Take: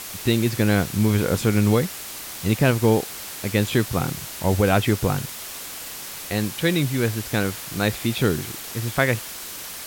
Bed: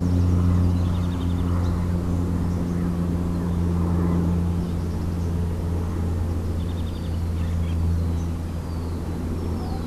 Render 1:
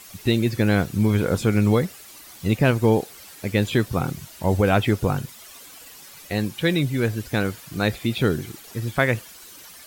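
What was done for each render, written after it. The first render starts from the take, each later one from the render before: noise reduction 12 dB, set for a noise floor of -35 dBFS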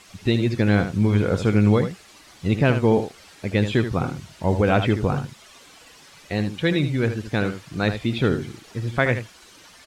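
distance through air 73 m; delay 77 ms -9.5 dB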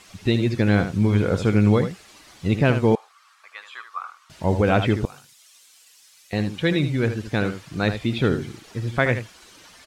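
2.95–4.30 s: ladder high-pass 1.1 kHz, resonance 80%; 5.05–6.33 s: pre-emphasis filter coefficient 0.97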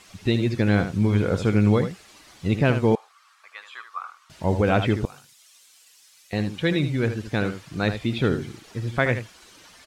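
trim -1.5 dB

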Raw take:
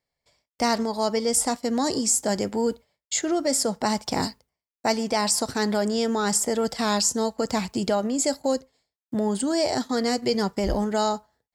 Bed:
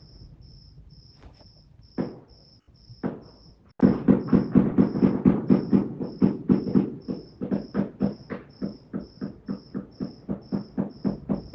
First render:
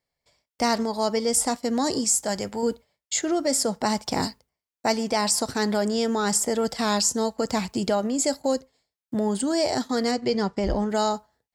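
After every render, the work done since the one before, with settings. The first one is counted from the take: 2.04–2.63 s: peaking EQ 300 Hz -7.5 dB 1.3 oct; 10.11–10.90 s: distance through air 79 m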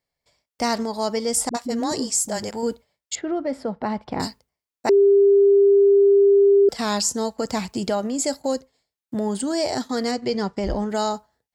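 1.49–2.51 s: phase dispersion highs, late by 56 ms, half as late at 320 Hz; 3.15–4.20 s: distance through air 450 m; 4.89–6.69 s: bleep 399 Hz -11 dBFS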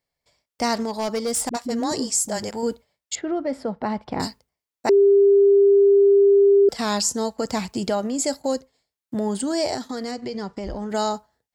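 0.80–1.72 s: hard clipper -20 dBFS; 9.75–10.94 s: compression, threshold -26 dBFS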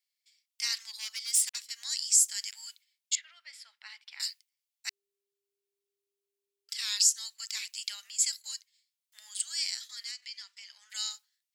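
inverse Chebyshev high-pass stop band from 390 Hz, stop band 80 dB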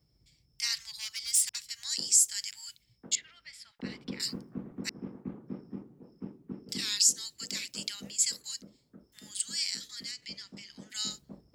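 add bed -21.5 dB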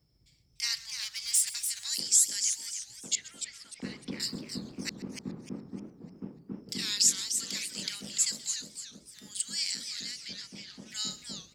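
frequency-shifting echo 129 ms, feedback 45%, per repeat -36 Hz, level -19 dB; modulated delay 297 ms, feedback 35%, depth 215 cents, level -7.5 dB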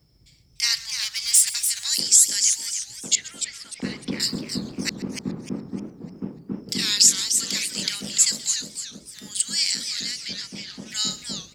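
trim +9.5 dB; peak limiter -3 dBFS, peak gain reduction 2.5 dB

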